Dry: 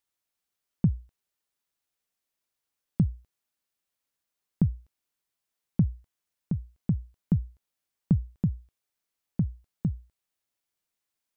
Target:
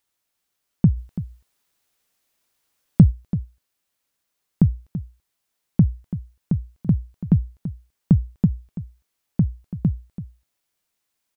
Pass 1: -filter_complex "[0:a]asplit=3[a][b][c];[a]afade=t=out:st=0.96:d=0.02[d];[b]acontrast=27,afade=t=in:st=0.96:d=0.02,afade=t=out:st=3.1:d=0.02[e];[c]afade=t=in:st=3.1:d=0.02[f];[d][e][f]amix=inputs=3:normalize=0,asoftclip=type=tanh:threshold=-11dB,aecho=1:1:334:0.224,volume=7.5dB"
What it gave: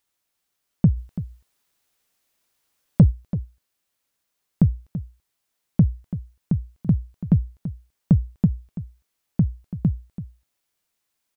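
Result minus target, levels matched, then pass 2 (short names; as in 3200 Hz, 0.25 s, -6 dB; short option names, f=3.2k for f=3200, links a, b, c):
soft clip: distortion +19 dB
-filter_complex "[0:a]asplit=3[a][b][c];[a]afade=t=out:st=0.96:d=0.02[d];[b]acontrast=27,afade=t=in:st=0.96:d=0.02,afade=t=out:st=3.1:d=0.02[e];[c]afade=t=in:st=3.1:d=0.02[f];[d][e][f]amix=inputs=3:normalize=0,asoftclip=type=tanh:threshold=0dB,aecho=1:1:334:0.224,volume=7.5dB"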